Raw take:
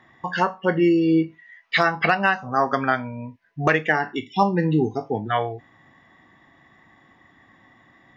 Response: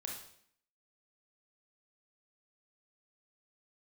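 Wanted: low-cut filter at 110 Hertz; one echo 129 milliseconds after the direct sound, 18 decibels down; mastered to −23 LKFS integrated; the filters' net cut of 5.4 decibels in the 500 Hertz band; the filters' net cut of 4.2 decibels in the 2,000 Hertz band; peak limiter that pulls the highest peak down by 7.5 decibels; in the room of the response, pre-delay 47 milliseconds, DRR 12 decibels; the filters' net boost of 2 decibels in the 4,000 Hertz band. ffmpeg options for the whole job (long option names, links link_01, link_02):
-filter_complex "[0:a]highpass=110,equalizer=frequency=500:width_type=o:gain=-8,equalizer=frequency=2000:width_type=o:gain=-6,equalizer=frequency=4000:width_type=o:gain=5,alimiter=limit=-15.5dB:level=0:latency=1,aecho=1:1:129:0.126,asplit=2[link_01][link_02];[1:a]atrim=start_sample=2205,adelay=47[link_03];[link_02][link_03]afir=irnorm=-1:irlink=0,volume=-11dB[link_04];[link_01][link_04]amix=inputs=2:normalize=0,volume=4.5dB"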